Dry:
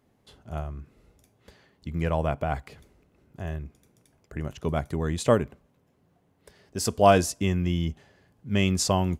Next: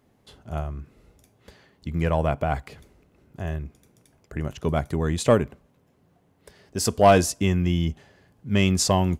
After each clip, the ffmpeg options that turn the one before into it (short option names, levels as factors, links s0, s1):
-af "asoftclip=type=tanh:threshold=0.376,volume=1.5"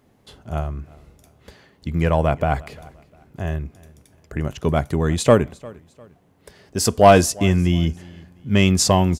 -af "aecho=1:1:351|702:0.0708|0.0234,volume=1.68"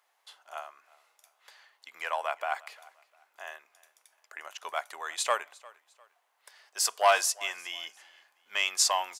-af "highpass=f=830:w=0.5412,highpass=f=830:w=1.3066,volume=0.596"